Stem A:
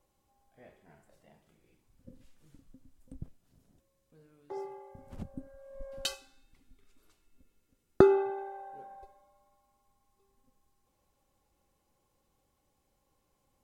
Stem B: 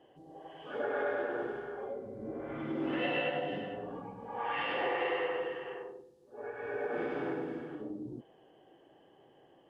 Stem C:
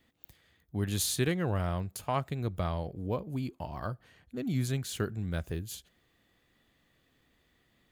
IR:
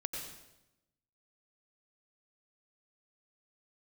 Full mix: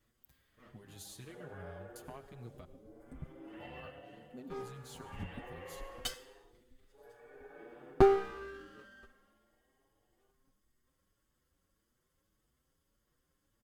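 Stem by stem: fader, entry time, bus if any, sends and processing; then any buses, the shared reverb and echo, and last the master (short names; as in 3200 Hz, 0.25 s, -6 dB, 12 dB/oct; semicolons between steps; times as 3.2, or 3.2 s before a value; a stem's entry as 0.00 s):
0.0 dB, 0.00 s, send -20.5 dB, minimum comb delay 0.62 ms
-14.5 dB, 0.60 s, no send, dry
-10.0 dB, 0.00 s, muted 2.65–3.51, send -9 dB, compressor 6:1, threshold -37 dBFS, peak gain reduction 12.5 dB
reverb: on, RT60 0.90 s, pre-delay 84 ms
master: endless flanger 6.7 ms +1.7 Hz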